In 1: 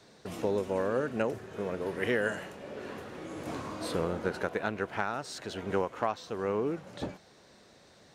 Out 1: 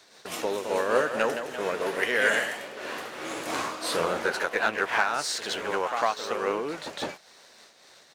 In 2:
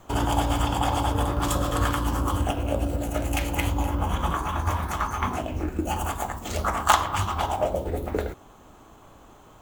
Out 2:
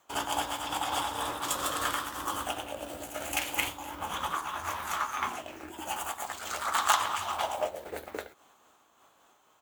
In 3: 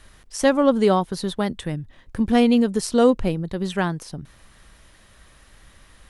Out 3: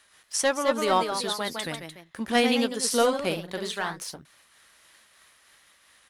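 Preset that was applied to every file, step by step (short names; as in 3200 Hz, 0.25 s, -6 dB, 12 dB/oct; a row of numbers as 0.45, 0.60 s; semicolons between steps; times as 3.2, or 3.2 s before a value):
HPF 1300 Hz 6 dB/oct; sample leveller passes 1; doubler 13 ms -13.5 dB; echoes that change speed 0.237 s, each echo +1 st, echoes 2, each echo -6 dB; noise-modulated level, depth 60%; normalise peaks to -9 dBFS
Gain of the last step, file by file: +11.5, -2.0, +2.5 dB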